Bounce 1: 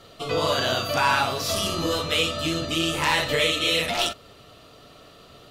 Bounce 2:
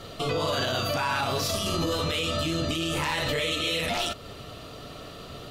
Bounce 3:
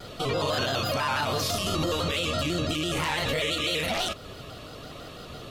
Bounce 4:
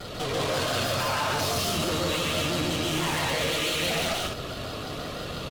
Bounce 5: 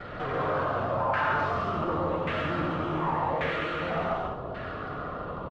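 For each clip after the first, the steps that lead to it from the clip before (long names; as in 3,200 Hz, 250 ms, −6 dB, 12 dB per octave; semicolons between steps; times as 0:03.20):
low-shelf EQ 250 Hz +5 dB; in parallel at 0 dB: downward compressor, threshold −31 dBFS, peak gain reduction 14 dB; on the sum: brickwall limiter −18.5 dBFS, peak gain reduction 10.5 dB
pitch modulation by a square or saw wave square 6 Hz, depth 100 cents
tube saturation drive 35 dB, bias 0.5; loudspeakers that aren't time-aligned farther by 48 metres −1 dB, 70 metres −4 dB; level +6.5 dB
auto-filter low-pass saw down 0.88 Hz 860–1,800 Hz; convolution reverb, pre-delay 3 ms, DRR 6.5 dB; downsampling to 22,050 Hz; level −3.5 dB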